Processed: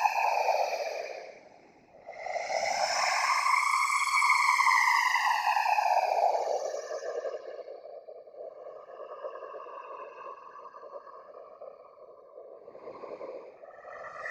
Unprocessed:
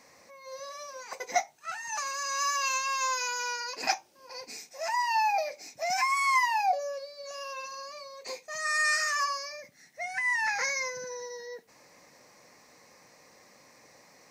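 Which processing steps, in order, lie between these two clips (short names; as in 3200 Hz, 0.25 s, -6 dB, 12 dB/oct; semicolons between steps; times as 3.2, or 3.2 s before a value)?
low-pass opened by the level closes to 330 Hz, open at -24.5 dBFS; Paulstretch 4.3×, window 0.25 s, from 5.27; whisperiser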